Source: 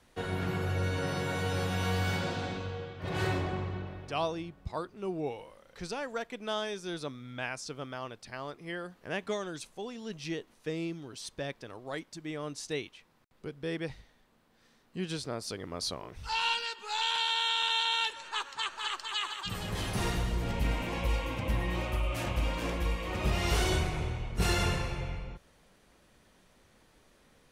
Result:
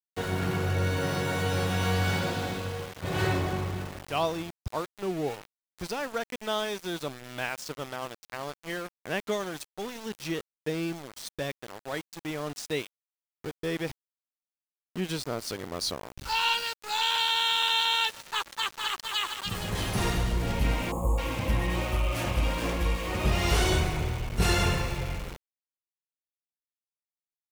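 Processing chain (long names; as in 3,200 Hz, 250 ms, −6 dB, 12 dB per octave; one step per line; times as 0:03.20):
centre clipping without the shift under −40.5 dBFS
gain on a spectral selection 0:20.92–0:21.18, 1,300–6,500 Hz −30 dB
level +4 dB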